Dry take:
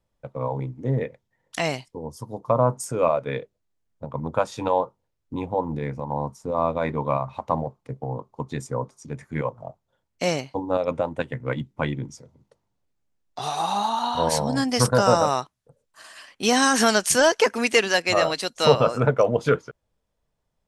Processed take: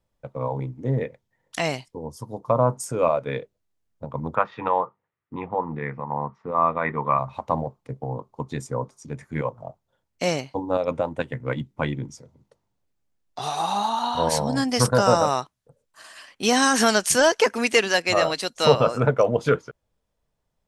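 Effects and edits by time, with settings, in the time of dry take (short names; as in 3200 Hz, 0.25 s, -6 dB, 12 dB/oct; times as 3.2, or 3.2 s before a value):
4.35–7.19 speaker cabinet 140–2900 Hz, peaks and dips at 280 Hz -6 dB, 560 Hz -5 dB, 1200 Hz +9 dB, 1900 Hz +9 dB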